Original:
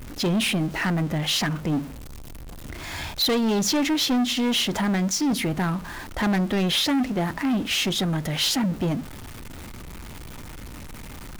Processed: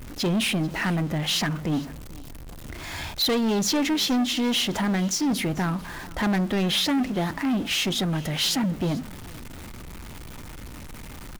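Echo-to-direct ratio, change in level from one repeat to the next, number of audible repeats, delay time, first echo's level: −21.0 dB, −14.0 dB, 2, 442 ms, −21.0 dB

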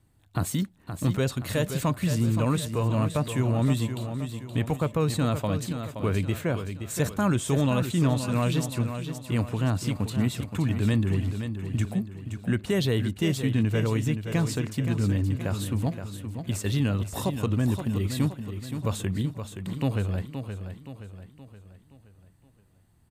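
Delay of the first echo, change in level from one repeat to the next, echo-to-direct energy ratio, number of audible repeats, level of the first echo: 522 ms, −6.5 dB, −7.5 dB, 4, −8.5 dB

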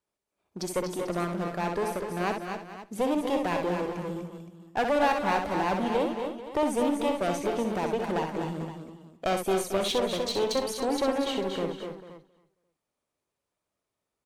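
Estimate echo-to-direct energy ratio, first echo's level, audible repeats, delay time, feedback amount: −2.0 dB, −6.0 dB, 7, 63 ms, repeats not evenly spaced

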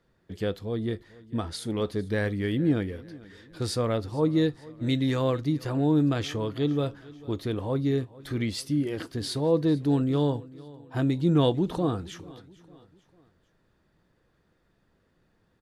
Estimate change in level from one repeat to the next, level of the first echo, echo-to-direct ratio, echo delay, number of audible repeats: −7.0 dB, −21.0 dB, −20.0 dB, 447 ms, 3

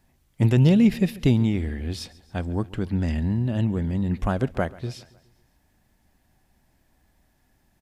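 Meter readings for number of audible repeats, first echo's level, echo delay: 3, −21.0 dB, 138 ms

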